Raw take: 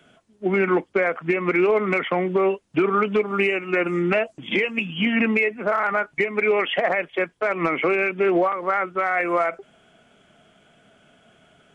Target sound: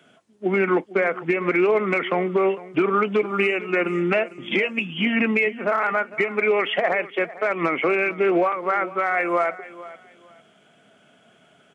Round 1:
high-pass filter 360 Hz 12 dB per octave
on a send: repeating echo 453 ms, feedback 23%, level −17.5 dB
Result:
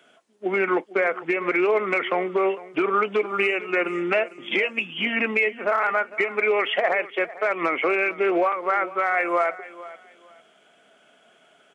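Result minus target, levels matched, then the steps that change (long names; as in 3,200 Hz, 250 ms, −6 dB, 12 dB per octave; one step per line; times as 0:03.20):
125 Hz band −9.5 dB
change: high-pass filter 140 Hz 12 dB per octave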